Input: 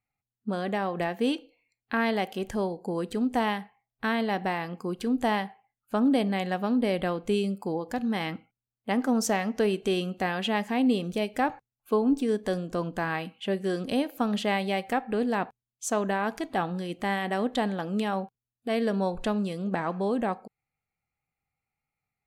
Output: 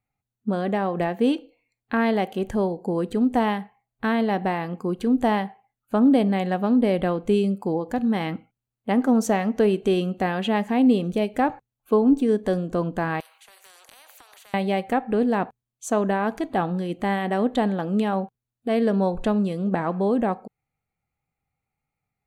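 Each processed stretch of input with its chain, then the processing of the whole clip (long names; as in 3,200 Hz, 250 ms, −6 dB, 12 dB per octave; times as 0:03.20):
0:13.20–0:14.54: Butterworth high-pass 780 Hz 48 dB per octave + downward compressor 3 to 1, threshold −42 dBFS + every bin compressed towards the loudest bin 4 to 1
whole clip: tilt shelving filter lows +4 dB, about 1,200 Hz; notch filter 5,200 Hz, Q 6.1; level +2.5 dB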